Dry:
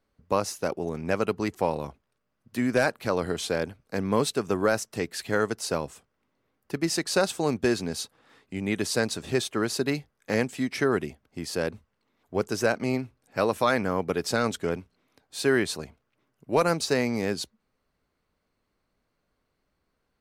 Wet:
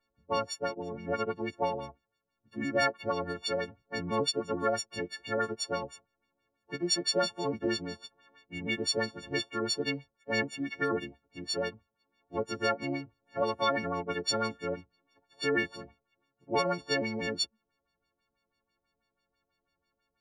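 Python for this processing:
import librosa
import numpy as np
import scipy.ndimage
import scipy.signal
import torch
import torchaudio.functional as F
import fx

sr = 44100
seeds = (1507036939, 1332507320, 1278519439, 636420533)

y = fx.freq_snap(x, sr, grid_st=4)
y = fx.filter_lfo_lowpass(y, sr, shape='sine', hz=6.1, low_hz=520.0, high_hz=5200.0, q=1.5)
y = F.gain(torch.from_numpy(y), -8.0).numpy()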